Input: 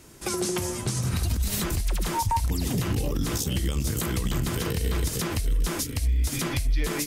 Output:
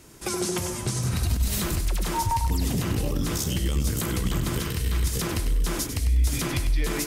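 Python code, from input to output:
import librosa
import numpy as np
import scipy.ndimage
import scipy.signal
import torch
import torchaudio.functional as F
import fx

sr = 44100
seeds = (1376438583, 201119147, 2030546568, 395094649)

y = fx.peak_eq(x, sr, hz=490.0, db=-7.5, octaves=1.8, at=(4.6, 5.14))
y = fx.echo_feedback(y, sr, ms=98, feedback_pct=30, wet_db=-8.5)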